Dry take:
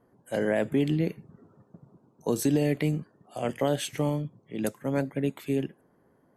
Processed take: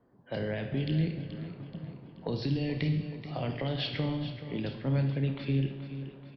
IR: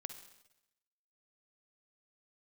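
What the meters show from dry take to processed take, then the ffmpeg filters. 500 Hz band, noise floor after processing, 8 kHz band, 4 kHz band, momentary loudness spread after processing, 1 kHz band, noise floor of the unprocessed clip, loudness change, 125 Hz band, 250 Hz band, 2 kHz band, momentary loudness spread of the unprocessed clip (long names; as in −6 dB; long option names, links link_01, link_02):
−8.0 dB, −52 dBFS, below −25 dB, +2.0 dB, 11 LU, −6.5 dB, −66 dBFS, −4.0 dB, +2.0 dB, −4.5 dB, −4.0 dB, 10 LU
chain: -filter_complex "[0:a]bass=frequency=250:gain=3,treble=frequency=4000:gain=-3,dynaudnorm=framelen=120:gausssize=5:maxgain=9.5dB,alimiter=limit=-8.5dB:level=0:latency=1,acrossover=split=130|3000[link_01][link_02][link_03];[link_02]acompressor=threshold=-32dB:ratio=4[link_04];[link_01][link_04][link_03]amix=inputs=3:normalize=0,asplit=2[link_05][link_06];[link_06]adelay=30,volume=-11dB[link_07];[link_05][link_07]amix=inputs=2:normalize=0,aecho=1:1:429|858|1287|1716|2145:0.251|0.126|0.0628|0.0314|0.0157[link_08];[1:a]atrim=start_sample=2205[link_09];[link_08][link_09]afir=irnorm=-1:irlink=0,aresample=11025,aresample=44100"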